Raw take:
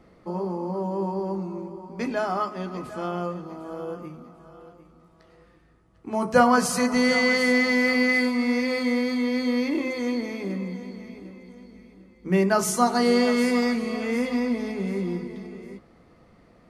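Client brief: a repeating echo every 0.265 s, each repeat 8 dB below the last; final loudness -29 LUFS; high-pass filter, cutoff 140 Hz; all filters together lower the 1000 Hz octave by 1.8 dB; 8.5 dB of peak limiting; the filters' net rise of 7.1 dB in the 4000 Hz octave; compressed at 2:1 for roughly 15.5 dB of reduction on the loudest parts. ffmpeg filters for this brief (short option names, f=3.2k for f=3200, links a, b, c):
-af "highpass=140,equalizer=f=1k:t=o:g=-3,equalizer=f=4k:t=o:g=8.5,acompressor=threshold=-43dB:ratio=2,alimiter=level_in=5.5dB:limit=-24dB:level=0:latency=1,volume=-5.5dB,aecho=1:1:265|530|795|1060|1325:0.398|0.159|0.0637|0.0255|0.0102,volume=9.5dB"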